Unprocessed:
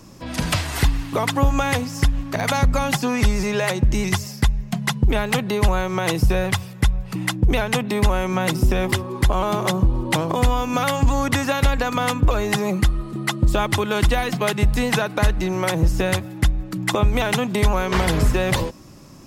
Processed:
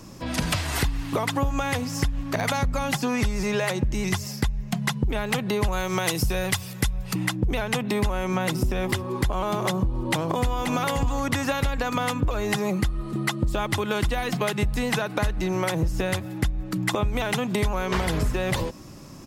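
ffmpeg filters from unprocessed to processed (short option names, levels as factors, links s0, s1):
-filter_complex "[0:a]asettb=1/sr,asplit=3[s0][s1][s2];[s0]atrim=end=5.724[s3];[s1]atrim=start=5.72:end=7.14,asetpts=PTS-STARTPTS,afade=t=in:d=0.004:c=qsin,afade=t=out:st=1.416:d=0.004:c=qsin,highshelf=f=3100:g=10.5[s4];[s2]atrim=start=7.136[s5];[s3][s4]acrossfade=d=0.004:c1=hsin:c2=qsin[s6];[s6][s5]acrossfade=d=0.004:c1=qsin:c2=hsin,asplit=2[s7][s8];[s8]afade=t=in:st=9.93:d=0.01,afade=t=out:st=10.66:d=0.01,aecho=0:1:530|1060:0.398107|0.0597161[s9];[s7][s9]amix=inputs=2:normalize=0,acompressor=threshold=0.0708:ratio=4,volume=1.12"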